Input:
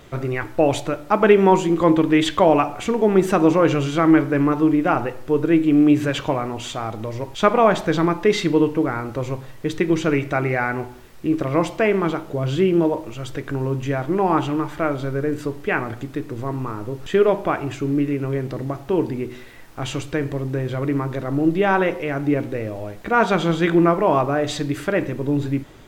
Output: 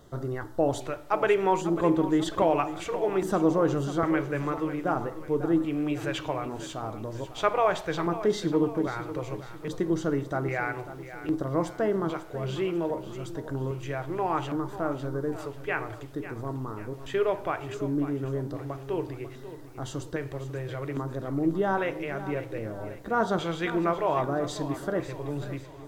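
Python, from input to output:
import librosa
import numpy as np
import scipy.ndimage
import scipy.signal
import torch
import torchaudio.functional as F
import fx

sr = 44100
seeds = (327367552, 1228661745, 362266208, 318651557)

p1 = fx.filter_lfo_notch(x, sr, shape='square', hz=0.62, low_hz=230.0, high_hz=2400.0, q=0.94)
p2 = p1 + fx.echo_feedback(p1, sr, ms=544, feedback_pct=46, wet_db=-13.0, dry=0)
y = p2 * 10.0 ** (-7.5 / 20.0)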